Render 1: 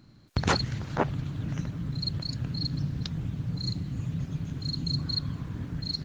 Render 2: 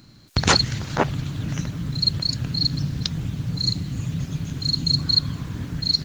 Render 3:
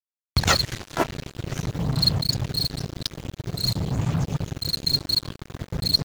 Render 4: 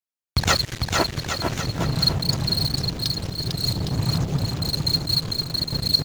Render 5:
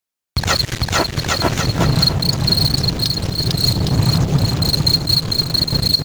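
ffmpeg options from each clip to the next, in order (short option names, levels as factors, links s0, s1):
-af "highshelf=f=2800:g=10.5,volume=1.78"
-af "aphaser=in_gain=1:out_gain=1:delay=3:decay=0.51:speed=0.49:type=sinusoidal,acrusher=bits=3:mix=0:aa=0.5,volume=0.668"
-af "aecho=1:1:450|810|1098|1328|1513:0.631|0.398|0.251|0.158|0.1"
-af "alimiter=limit=0.251:level=0:latency=1:release=216,volume=2.66"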